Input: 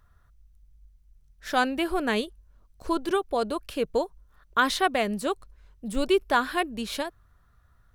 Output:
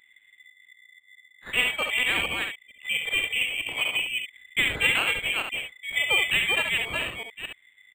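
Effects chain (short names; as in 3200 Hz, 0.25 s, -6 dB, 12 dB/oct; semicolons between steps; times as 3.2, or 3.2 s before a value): reverse delay 0.226 s, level -2.5 dB; on a send: early reflections 54 ms -13.5 dB, 70 ms -6 dB; on the sum: inverted band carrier 3500 Hz; decimation joined by straight lines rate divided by 8×; gain +1.5 dB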